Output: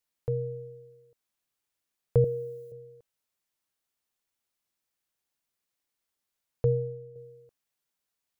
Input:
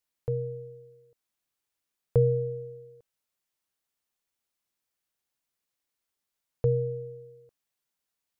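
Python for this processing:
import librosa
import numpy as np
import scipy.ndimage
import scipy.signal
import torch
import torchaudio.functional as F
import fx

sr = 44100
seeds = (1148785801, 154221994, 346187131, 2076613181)

y = fx.tilt_eq(x, sr, slope=4.0, at=(2.24, 2.72))
y = fx.upward_expand(y, sr, threshold_db=-36.0, expansion=1.5, at=(6.68, 7.16))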